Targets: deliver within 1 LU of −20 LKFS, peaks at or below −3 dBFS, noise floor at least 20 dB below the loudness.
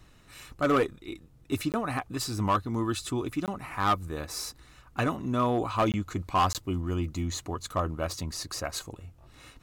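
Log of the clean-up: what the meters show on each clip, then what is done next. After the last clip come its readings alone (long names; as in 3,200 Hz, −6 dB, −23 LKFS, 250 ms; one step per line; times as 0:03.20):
share of clipped samples 0.6%; peaks flattened at −18.5 dBFS; number of dropouts 4; longest dropout 18 ms; integrated loudness −30.0 LKFS; sample peak −18.5 dBFS; target loudness −20.0 LKFS
→ clipped peaks rebuilt −18.5 dBFS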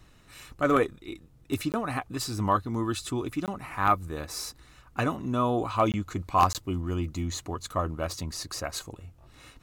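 share of clipped samples 0.0%; number of dropouts 4; longest dropout 18 ms
→ repair the gap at 0:01.72/0:03.46/0:05.92/0:06.53, 18 ms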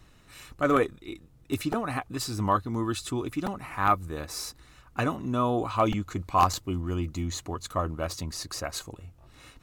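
number of dropouts 0; integrated loudness −29.5 LKFS; sample peak −9.5 dBFS; target loudness −20.0 LKFS
→ level +9.5 dB
brickwall limiter −3 dBFS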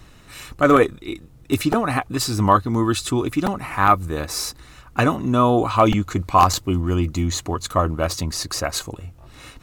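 integrated loudness −20.5 LKFS; sample peak −3.0 dBFS; background noise floor −47 dBFS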